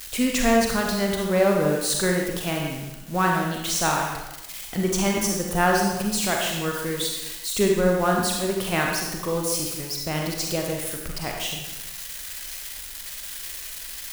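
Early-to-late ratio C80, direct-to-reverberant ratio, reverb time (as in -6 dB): 4.0 dB, -0.5 dB, 1.0 s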